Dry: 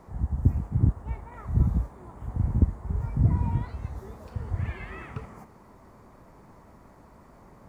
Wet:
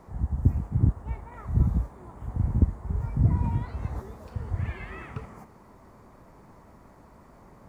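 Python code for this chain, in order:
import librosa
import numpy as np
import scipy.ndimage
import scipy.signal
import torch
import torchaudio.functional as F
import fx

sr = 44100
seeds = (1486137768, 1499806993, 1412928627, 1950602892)

y = fx.band_squash(x, sr, depth_pct=70, at=(3.44, 4.02))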